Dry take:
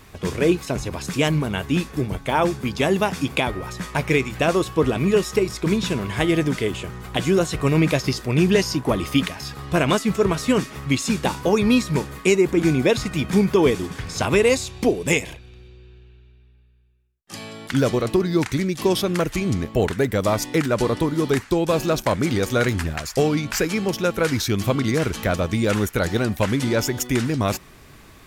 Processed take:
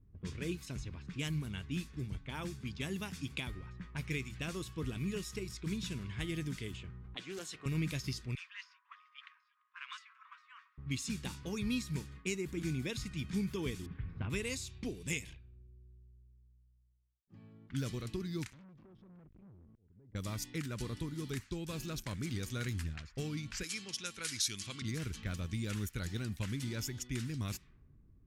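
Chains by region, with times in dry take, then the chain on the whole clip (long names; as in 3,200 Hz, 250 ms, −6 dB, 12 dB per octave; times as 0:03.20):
0:07.14–0:07.66: high-pass filter 350 Hz + highs frequency-modulated by the lows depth 0.13 ms
0:08.35–0:10.78: Butterworth high-pass 1,000 Hz 96 dB per octave + high-shelf EQ 5,500 Hz −12 dB + single-tap delay 343 ms −14.5 dB
0:13.86–0:14.30: Bessel low-pass filter 1,900 Hz, order 4 + low-shelf EQ 450 Hz +3.5 dB
0:18.48–0:20.15: downward compressor 12 to 1, threshold −28 dBFS + volume swells 607 ms + saturating transformer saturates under 2,000 Hz
0:23.63–0:24.82: elliptic low-pass filter 11,000 Hz + spectral tilt +3.5 dB per octave
whole clip: low-pass that shuts in the quiet parts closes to 390 Hz, open at −18.5 dBFS; guitar amp tone stack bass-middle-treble 6-0-2; level +1 dB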